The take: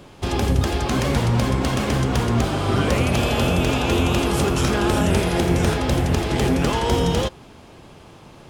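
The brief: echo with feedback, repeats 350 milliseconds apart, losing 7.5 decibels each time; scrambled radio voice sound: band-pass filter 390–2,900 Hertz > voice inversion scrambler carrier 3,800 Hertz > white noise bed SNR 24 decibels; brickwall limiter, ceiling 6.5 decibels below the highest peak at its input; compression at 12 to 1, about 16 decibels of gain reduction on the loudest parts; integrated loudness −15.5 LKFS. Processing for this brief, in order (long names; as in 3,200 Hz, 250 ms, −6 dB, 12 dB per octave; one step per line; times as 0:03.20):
downward compressor 12 to 1, threshold −29 dBFS
brickwall limiter −25 dBFS
band-pass filter 390–2,900 Hz
repeating echo 350 ms, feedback 42%, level −7.5 dB
voice inversion scrambler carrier 3,800 Hz
white noise bed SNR 24 dB
level +21 dB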